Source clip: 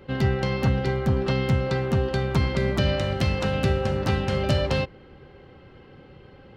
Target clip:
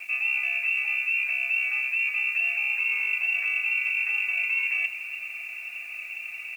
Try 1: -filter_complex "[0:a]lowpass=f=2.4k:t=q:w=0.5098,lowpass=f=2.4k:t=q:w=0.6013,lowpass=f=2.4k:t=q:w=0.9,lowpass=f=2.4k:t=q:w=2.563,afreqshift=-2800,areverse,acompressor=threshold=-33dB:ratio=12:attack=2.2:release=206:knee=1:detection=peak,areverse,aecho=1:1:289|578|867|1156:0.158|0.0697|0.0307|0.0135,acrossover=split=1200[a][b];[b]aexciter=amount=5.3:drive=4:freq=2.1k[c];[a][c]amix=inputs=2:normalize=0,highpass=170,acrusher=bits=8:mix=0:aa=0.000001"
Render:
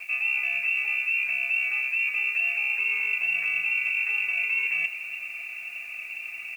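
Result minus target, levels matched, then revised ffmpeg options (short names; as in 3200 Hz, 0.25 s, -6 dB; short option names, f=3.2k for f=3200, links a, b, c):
125 Hz band +9.0 dB
-filter_complex "[0:a]lowpass=f=2.4k:t=q:w=0.5098,lowpass=f=2.4k:t=q:w=0.6013,lowpass=f=2.4k:t=q:w=0.9,lowpass=f=2.4k:t=q:w=2.563,afreqshift=-2800,areverse,acompressor=threshold=-33dB:ratio=12:attack=2.2:release=206:knee=1:detection=peak,areverse,aecho=1:1:289|578|867|1156:0.158|0.0697|0.0307|0.0135,acrossover=split=1200[a][b];[b]aexciter=amount=5.3:drive=4:freq=2.1k[c];[a][c]amix=inputs=2:normalize=0,highpass=540,acrusher=bits=8:mix=0:aa=0.000001"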